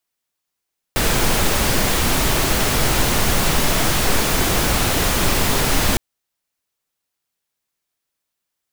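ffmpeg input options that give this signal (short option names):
-f lavfi -i "anoisesrc=c=pink:a=0.724:d=5.01:r=44100:seed=1"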